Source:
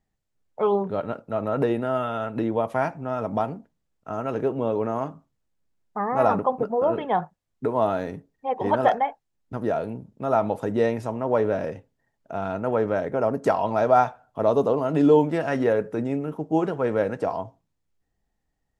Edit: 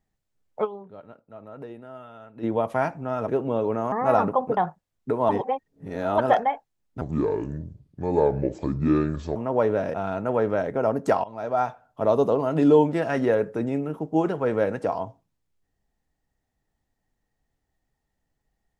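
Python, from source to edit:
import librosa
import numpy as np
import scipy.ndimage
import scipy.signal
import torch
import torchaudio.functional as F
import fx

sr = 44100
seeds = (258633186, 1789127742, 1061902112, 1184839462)

y = fx.edit(x, sr, fx.fade_down_up(start_s=0.64, length_s=1.8, db=-16.5, fade_s=0.13, curve='exp'),
    fx.cut(start_s=3.28, length_s=1.11),
    fx.cut(start_s=5.03, length_s=1.0),
    fx.cut(start_s=6.68, length_s=0.44),
    fx.reverse_span(start_s=7.84, length_s=0.89),
    fx.speed_span(start_s=9.56, length_s=1.55, speed=0.66),
    fx.cut(start_s=11.69, length_s=0.63),
    fx.fade_in_from(start_s=13.62, length_s=0.8, floor_db=-19.0), tone=tone)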